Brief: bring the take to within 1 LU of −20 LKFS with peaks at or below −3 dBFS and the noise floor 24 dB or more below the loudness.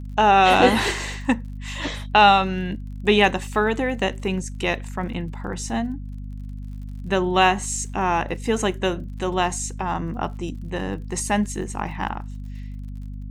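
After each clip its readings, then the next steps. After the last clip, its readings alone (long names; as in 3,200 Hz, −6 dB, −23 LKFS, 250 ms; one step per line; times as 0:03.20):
crackle rate 47 per second; mains hum 50 Hz; hum harmonics up to 250 Hz; level of the hum −31 dBFS; integrated loudness −22.0 LKFS; sample peak −3.0 dBFS; target loudness −20.0 LKFS
→ click removal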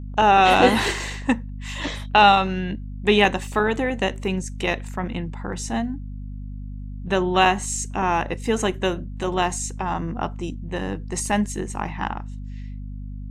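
crackle rate 0 per second; mains hum 50 Hz; hum harmonics up to 250 Hz; level of the hum −31 dBFS
→ mains-hum notches 50/100/150/200/250 Hz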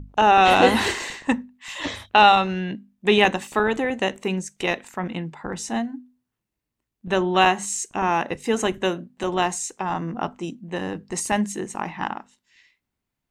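mains hum none found; integrated loudness −22.5 LKFS; sample peak −2.5 dBFS; target loudness −20.0 LKFS
→ level +2.5 dB
brickwall limiter −3 dBFS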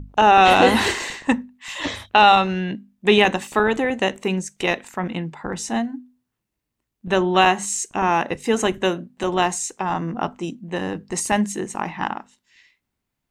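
integrated loudness −20.5 LKFS; sample peak −3.0 dBFS; background noise floor −80 dBFS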